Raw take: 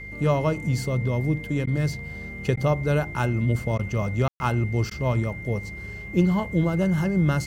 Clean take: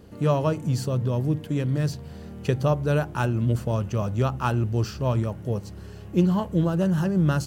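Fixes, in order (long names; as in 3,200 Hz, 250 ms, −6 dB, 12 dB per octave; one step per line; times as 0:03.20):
hum removal 50.1 Hz, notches 4
notch filter 2,100 Hz, Q 30
ambience match 0:04.28–0:04.40
repair the gap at 0:01.66/0:02.56/0:03.78/0:04.90, 10 ms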